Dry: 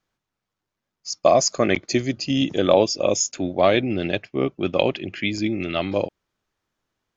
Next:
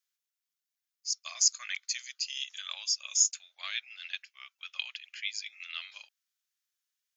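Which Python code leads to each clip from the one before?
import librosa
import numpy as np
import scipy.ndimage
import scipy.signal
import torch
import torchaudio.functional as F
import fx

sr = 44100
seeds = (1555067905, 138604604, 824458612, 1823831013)

y = scipy.signal.sosfilt(scipy.signal.butter(4, 1300.0, 'highpass', fs=sr, output='sos'), x)
y = np.diff(y, prepend=0.0)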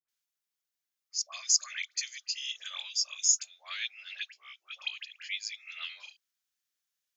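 y = fx.dispersion(x, sr, late='highs', ms=87.0, hz=1100.0)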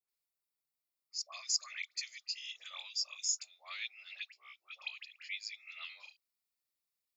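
y = fx.graphic_eq_31(x, sr, hz=(1600, 3150, 6300), db=(-12, -9, -11))
y = y * 10.0 ** (-1.5 / 20.0)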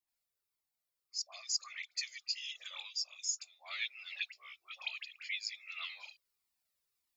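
y = fx.rider(x, sr, range_db=4, speed_s=0.5)
y = fx.comb_cascade(y, sr, direction='falling', hz=1.7)
y = y * 10.0 ** (4.5 / 20.0)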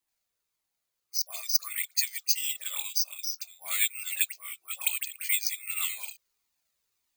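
y = (np.kron(scipy.signal.resample_poly(x, 1, 4), np.eye(4)[0]) * 4)[:len(x)]
y = y * 10.0 ** (6.5 / 20.0)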